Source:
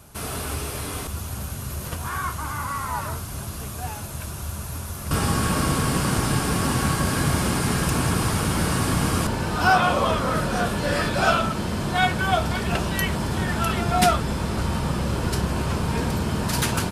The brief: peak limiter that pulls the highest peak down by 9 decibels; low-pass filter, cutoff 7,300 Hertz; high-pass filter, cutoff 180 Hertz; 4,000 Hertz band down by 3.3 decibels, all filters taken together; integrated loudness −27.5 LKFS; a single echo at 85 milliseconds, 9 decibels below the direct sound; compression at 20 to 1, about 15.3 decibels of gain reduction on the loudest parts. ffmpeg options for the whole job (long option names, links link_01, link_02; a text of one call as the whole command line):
ffmpeg -i in.wav -af "highpass=180,lowpass=7300,equalizer=frequency=4000:width_type=o:gain=-4,acompressor=threshold=-29dB:ratio=20,alimiter=level_in=3dB:limit=-24dB:level=0:latency=1,volume=-3dB,aecho=1:1:85:0.355,volume=8dB" out.wav